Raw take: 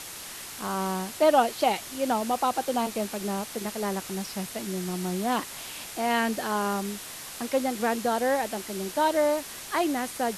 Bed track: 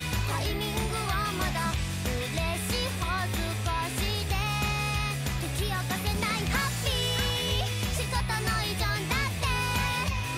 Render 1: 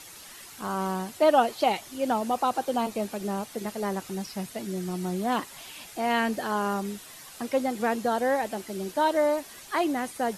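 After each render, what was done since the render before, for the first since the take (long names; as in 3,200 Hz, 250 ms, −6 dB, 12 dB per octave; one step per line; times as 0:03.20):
broadband denoise 9 dB, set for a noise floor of −41 dBFS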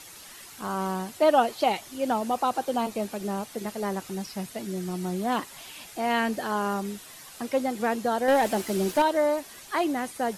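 0:08.28–0:09.02: leveller curve on the samples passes 2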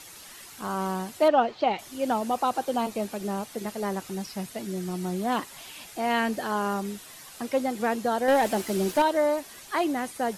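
0:01.28–0:01.79: high-frequency loss of the air 190 metres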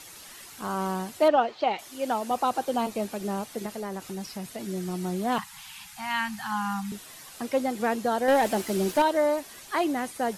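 0:01.36–0:02.31: low-shelf EQ 220 Hz −10.5 dB
0:03.66–0:04.63: downward compressor 3 to 1, threshold −31 dBFS
0:05.38–0:06.92: Chebyshev band-stop filter 210–810 Hz, order 4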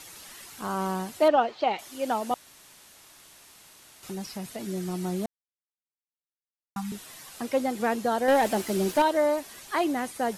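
0:02.34–0:04.03: fill with room tone
0:05.26–0:06.76: silence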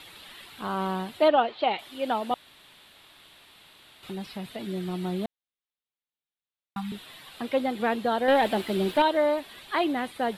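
high shelf with overshoot 4,600 Hz −8 dB, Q 3
notch filter 6,500 Hz, Q 21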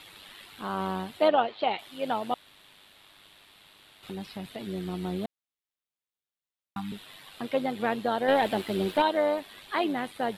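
amplitude modulation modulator 100 Hz, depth 30%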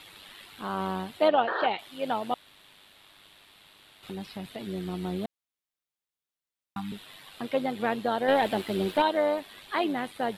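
0:01.47–0:01.67: sound drawn into the spectrogram noise 330–1,900 Hz −30 dBFS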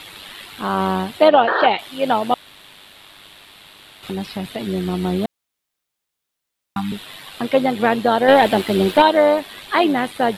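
level +11.5 dB
brickwall limiter −2 dBFS, peak gain reduction 2.5 dB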